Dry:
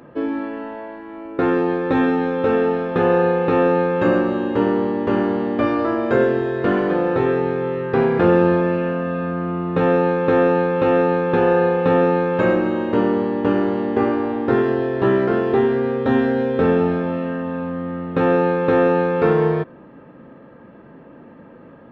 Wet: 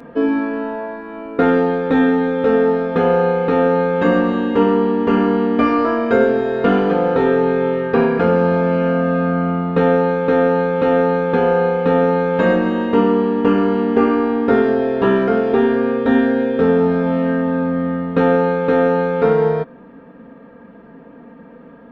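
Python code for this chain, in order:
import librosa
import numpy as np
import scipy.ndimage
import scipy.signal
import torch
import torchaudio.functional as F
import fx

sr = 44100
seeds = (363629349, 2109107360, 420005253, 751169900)

y = x + 0.73 * np.pad(x, (int(4.3 * sr / 1000.0), 0))[:len(x)]
y = fx.rider(y, sr, range_db=3, speed_s=0.5)
y = y * librosa.db_to_amplitude(1.0)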